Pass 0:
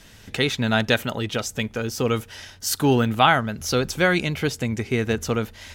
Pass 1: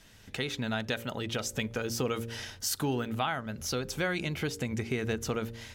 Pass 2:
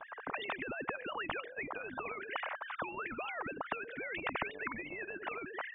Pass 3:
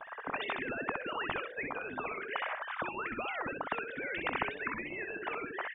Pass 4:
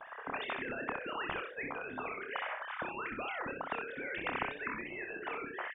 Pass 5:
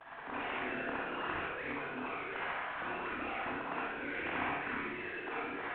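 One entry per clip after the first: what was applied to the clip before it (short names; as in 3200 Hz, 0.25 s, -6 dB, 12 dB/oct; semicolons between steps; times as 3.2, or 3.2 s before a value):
AGC; de-hum 57.71 Hz, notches 10; compressor 2.5:1, threshold -23 dBFS, peak gain reduction 10.5 dB; gain -8.5 dB
sine-wave speech; ladder low-pass 1400 Hz, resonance 40%; spectral compressor 10:1; gain +1.5 dB
early reflections 24 ms -17 dB, 63 ms -5.5 dB; gain +2 dB
doubler 28 ms -6.5 dB; gain -3 dB
CVSD 16 kbps; air absorption 52 m; reverb RT60 0.95 s, pre-delay 38 ms, DRR -6 dB; gain -5.5 dB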